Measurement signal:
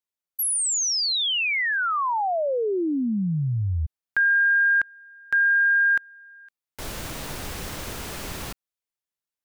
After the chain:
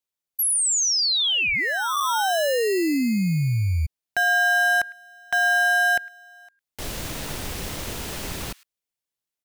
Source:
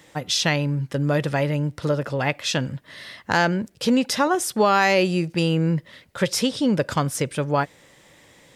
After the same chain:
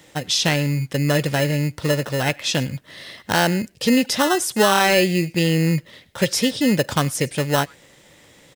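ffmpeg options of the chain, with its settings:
-filter_complex "[0:a]acrossover=split=1400[s0][s1];[s0]acrusher=samples=19:mix=1:aa=0.000001[s2];[s1]aecho=1:1:105:0.106[s3];[s2][s3]amix=inputs=2:normalize=0,volume=1.33"

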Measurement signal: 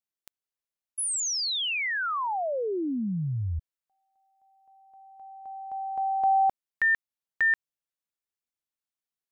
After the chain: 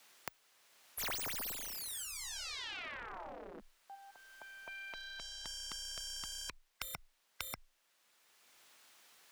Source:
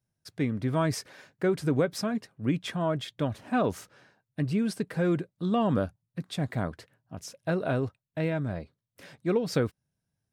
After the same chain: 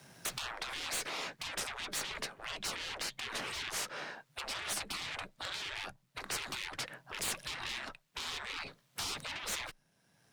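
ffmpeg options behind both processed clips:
-filter_complex "[0:a]aeval=exprs='if(lt(val(0),0),0.708*val(0),val(0))':c=same,afreqshift=16,acompressor=threshold=0.0112:ratio=8:attack=0.27:release=977:knee=1:detection=rms,asplit=2[s0][s1];[s1]highpass=f=720:p=1,volume=20,asoftclip=type=tanh:threshold=0.0224[s2];[s0][s2]amix=inputs=2:normalize=0,lowpass=f=4000:p=1,volume=0.501,afftfilt=real='re*lt(hypot(re,im),0.00708)':imag='im*lt(hypot(re,im),0.00708)':win_size=1024:overlap=0.75,volume=6.31"

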